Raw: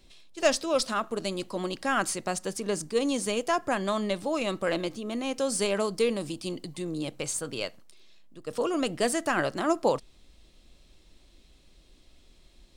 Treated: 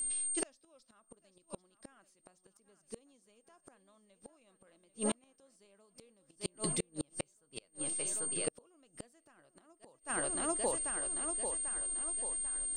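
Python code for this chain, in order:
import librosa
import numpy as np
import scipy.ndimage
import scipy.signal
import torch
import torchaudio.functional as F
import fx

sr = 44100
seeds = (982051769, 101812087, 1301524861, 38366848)

y = x + 10.0 ** (-35.0 / 20.0) * np.sin(2.0 * np.pi * 8700.0 * np.arange(len(x)) / sr)
y = fx.echo_thinned(y, sr, ms=792, feedback_pct=48, hz=190.0, wet_db=-12.5)
y = fx.gate_flip(y, sr, shuts_db=-22.0, range_db=-40)
y = y * 10.0 ** (1.5 / 20.0)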